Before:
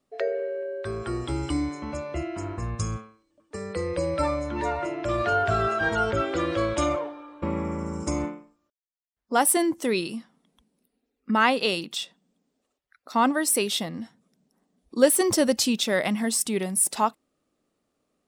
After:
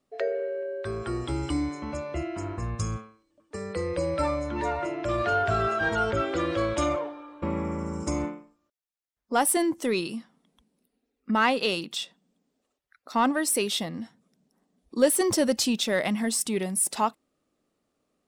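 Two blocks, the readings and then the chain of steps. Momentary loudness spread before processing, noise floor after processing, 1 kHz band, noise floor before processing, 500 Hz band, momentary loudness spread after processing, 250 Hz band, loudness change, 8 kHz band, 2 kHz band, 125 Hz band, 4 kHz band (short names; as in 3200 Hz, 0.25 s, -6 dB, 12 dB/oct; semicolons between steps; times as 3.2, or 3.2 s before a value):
13 LU, -80 dBFS, -1.5 dB, -79 dBFS, -1.5 dB, 12 LU, -1.0 dB, -1.5 dB, -2.5 dB, -1.5 dB, -1.0 dB, -1.5 dB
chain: in parallel at -6 dB: soft clip -21 dBFS, distortion -10 dB; on the sum: high shelf 12000 Hz -3.5 dB; gain -4 dB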